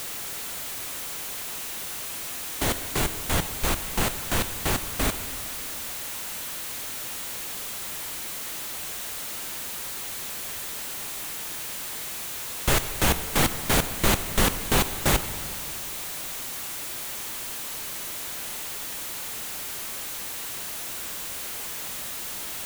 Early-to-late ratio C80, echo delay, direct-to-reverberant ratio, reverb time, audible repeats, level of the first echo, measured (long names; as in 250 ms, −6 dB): 12.5 dB, no echo audible, 11.0 dB, 2.4 s, no echo audible, no echo audible